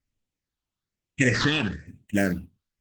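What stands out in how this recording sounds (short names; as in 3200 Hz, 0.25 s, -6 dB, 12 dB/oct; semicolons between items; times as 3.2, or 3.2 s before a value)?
aliases and images of a low sample rate 10000 Hz, jitter 20%; phasing stages 6, 1.1 Hz, lowest notch 500–1400 Hz; Opus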